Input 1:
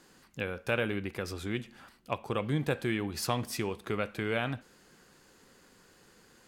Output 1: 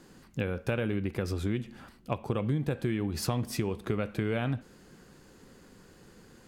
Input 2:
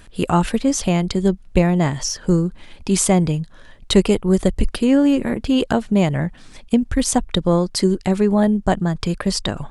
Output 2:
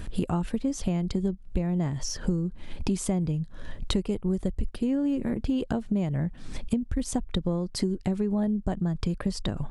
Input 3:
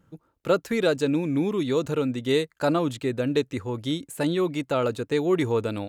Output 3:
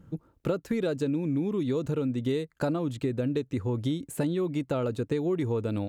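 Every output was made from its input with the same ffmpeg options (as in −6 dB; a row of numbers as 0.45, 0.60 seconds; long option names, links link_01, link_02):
-af "lowshelf=frequency=460:gain=11,acompressor=threshold=-26dB:ratio=6"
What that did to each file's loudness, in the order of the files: +1.5, −10.5, −4.0 LU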